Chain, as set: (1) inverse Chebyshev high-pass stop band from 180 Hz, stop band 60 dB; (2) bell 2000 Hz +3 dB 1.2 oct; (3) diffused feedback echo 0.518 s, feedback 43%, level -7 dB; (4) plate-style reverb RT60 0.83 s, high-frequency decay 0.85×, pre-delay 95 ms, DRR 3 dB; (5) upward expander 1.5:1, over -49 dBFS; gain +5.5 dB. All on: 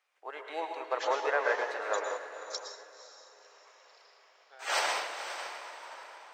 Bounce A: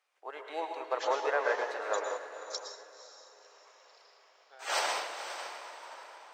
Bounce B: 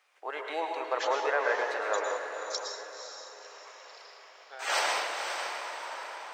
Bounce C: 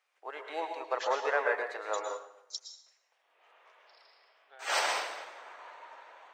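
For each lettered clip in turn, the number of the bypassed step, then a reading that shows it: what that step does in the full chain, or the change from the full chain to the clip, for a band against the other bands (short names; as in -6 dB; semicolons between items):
2, 2 kHz band -2.0 dB; 5, momentary loudness spread change +3 LU; 3, momentary loudness spread change +3 LU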